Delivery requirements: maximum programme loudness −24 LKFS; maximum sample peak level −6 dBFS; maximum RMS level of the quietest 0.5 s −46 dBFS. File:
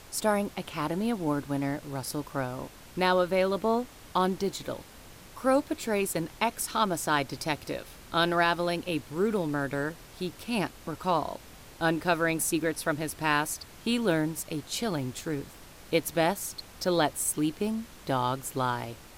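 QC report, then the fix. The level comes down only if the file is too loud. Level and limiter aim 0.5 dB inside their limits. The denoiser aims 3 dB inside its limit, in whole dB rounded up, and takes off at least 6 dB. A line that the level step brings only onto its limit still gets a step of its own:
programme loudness −29.5 LKFS: in spec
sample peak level −11.5 dBFS: in spec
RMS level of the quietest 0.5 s −49 dBFS: in spec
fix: no processing needed

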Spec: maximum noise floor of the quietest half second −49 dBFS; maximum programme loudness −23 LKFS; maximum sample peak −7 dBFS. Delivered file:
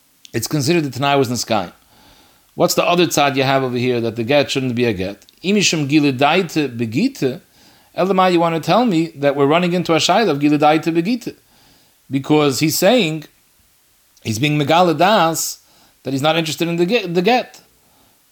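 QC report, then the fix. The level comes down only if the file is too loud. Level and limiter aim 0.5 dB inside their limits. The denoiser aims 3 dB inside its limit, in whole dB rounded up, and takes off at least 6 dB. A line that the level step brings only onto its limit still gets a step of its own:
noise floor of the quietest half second −56 dBFS: in spec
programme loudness −16.5 LKFS: out of spec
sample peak −2.5 dBFS: out of spec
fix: level −7 dB

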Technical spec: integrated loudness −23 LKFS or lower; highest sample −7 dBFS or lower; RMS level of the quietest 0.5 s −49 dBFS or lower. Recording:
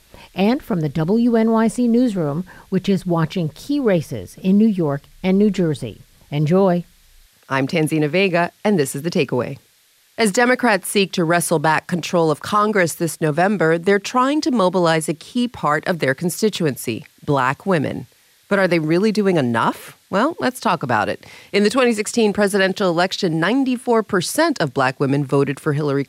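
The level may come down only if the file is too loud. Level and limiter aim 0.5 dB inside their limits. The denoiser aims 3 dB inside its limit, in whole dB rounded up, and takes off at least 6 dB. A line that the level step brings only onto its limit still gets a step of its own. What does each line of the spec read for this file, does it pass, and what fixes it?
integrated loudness −18.5 LKFS: out of spec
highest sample −5.5 dBFS: out of spec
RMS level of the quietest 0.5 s −56 dBFS: in spec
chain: level −5 dB

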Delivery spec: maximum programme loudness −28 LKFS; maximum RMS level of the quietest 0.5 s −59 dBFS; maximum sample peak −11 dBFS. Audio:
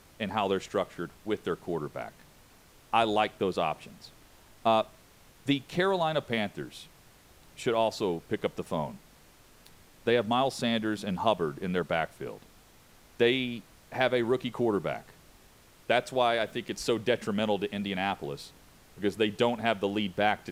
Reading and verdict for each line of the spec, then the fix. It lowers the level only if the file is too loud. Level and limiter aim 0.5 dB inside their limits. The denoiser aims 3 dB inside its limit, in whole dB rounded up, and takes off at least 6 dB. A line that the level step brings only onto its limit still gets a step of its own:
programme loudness −30.0 LKFS: in spec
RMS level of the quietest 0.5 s −57 dBFS: out of spec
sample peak −9.5 dBFS: out of spec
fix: broadband denoise 6 dB, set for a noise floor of −57 dBFS
brickwall limiter −11.5 dBFS

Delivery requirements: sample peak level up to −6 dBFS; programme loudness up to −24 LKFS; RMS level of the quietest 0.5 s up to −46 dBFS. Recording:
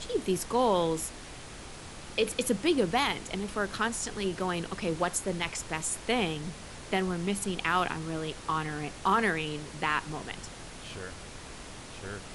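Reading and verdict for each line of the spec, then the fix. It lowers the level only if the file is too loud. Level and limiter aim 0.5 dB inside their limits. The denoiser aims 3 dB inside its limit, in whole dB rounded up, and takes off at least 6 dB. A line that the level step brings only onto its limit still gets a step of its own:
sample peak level −14.0 dBFS: in spec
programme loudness −30.5 LKFS: in spec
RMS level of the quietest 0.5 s −44 dBFS: out of spec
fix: broadband denoise 6 dB, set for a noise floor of −44 dBFS

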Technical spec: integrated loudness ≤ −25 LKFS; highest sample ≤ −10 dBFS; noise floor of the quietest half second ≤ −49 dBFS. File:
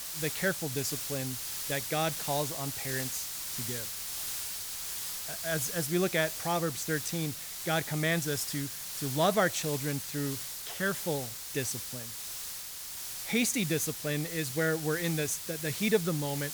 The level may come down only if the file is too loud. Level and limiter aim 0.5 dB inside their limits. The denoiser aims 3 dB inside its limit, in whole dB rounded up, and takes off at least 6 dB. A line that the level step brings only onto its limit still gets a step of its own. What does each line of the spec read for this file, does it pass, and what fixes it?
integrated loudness −31.5 LKFS: in spec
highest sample −13.0 dBFS: in spec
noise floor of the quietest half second −41 dBFS: out of spec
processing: broadband denoise 11 dB, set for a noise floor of −41 dBFS

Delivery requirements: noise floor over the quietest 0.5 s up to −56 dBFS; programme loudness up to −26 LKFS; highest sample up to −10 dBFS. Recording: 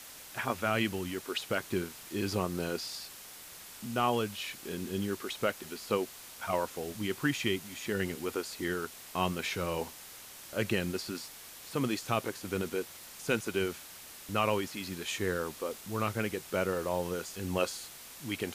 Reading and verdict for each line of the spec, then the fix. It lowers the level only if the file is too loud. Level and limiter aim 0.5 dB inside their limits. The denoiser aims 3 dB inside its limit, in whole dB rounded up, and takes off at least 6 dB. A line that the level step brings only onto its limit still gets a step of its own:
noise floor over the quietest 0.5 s −49 dBFS: out of spec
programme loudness −34.5 LKFS: in spec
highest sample −16.0 dBFS: in spec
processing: broadband denoise 10 dB, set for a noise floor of −49 dBFS

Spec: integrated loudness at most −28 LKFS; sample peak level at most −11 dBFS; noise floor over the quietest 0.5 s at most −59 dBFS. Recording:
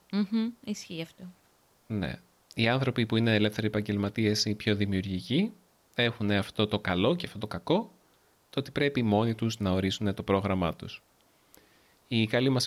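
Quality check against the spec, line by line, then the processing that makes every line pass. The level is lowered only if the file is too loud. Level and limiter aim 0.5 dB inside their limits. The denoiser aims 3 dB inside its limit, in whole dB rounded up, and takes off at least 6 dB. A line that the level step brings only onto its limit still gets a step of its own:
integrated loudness −29.0 LKFS: in spec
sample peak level −13.0 dBFS: in spec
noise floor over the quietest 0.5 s −65 dBFS: in spec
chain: no processing needed

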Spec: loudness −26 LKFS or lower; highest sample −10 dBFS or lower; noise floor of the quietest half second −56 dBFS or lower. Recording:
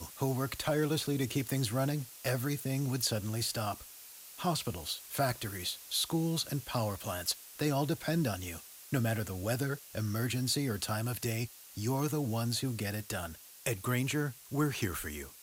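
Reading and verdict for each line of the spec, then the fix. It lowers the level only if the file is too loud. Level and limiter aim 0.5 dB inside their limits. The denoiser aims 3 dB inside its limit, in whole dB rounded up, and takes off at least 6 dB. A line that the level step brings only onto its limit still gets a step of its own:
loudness −34.0 LKFS: in spec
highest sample −18.5 dBFS: in spec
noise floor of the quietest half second −51 dBFS: out of spec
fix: broadband denoise 8 dB, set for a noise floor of −51 dBFS

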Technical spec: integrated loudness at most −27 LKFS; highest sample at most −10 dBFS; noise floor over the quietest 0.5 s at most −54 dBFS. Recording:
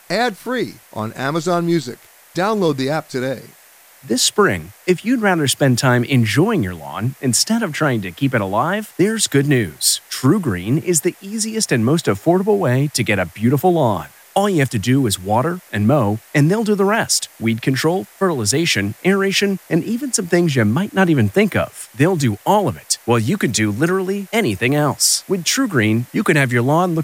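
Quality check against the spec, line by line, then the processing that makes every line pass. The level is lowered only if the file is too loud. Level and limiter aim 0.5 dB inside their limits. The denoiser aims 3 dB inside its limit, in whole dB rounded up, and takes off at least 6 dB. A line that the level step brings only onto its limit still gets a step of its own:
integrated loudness −17.5 LKFS: out of spec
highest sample −2.5 dBFS: out of spec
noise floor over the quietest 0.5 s −47 dBFS: out of spec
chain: level −10 dB

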